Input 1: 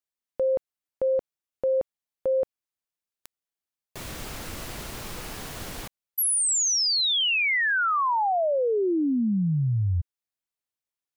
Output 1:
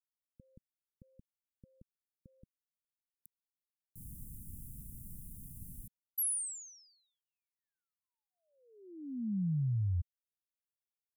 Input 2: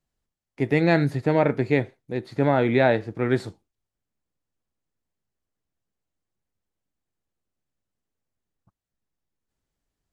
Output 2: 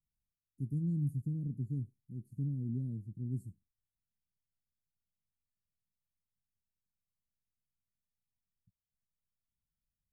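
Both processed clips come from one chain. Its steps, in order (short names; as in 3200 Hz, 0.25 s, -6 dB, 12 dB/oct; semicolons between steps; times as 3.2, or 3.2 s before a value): inverse Chebyshev band-stop 740–3200 Hz, stop band 70 dB; gain -8 dB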